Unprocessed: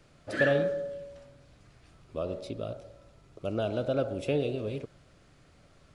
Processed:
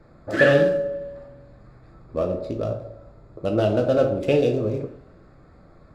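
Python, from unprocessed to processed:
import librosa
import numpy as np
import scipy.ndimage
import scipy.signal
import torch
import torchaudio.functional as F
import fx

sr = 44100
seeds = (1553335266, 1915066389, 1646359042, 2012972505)

y = fx.wiener(x, sr, points=15)
y = fx.rev_double_slope(y, sr, seeds[0], early_s=0.41, late_s=1.9, knee_db=-27, drr_db=3.0)
y = y * librosa.db_to_amplitude(8.5)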